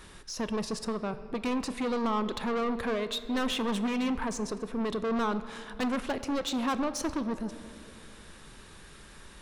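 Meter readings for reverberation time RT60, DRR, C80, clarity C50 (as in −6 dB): 2.6 s, 11.0 dB, 13.5 dB, 12.5 dB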